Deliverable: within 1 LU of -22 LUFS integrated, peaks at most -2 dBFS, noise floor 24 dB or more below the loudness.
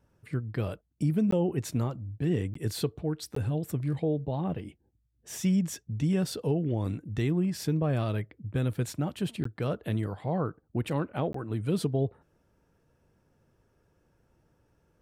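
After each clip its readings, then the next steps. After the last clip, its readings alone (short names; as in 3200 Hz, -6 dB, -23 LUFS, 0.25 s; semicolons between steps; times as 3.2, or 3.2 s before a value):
dropouts 5; longest dropout 14 ms; loudness -31.0 LUFS; peak -16.0 dBFS; loudness target -22.0 LUFS
-> interpolate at 1.31/2.54/3.35/9.44/11.33, 14 ms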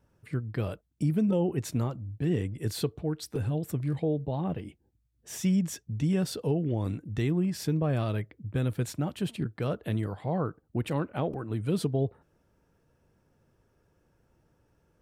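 dropouts 0; loudness -31.0 LUFS; peak -16.0 dBFS; loudness target -22.0 LUFS
-> gain +9 dB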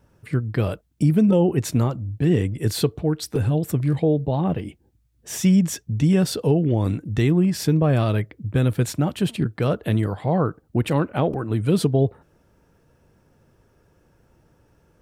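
loudness -22.0 LUFS; peak -6.5 dBFS; noise floor -62 dBFS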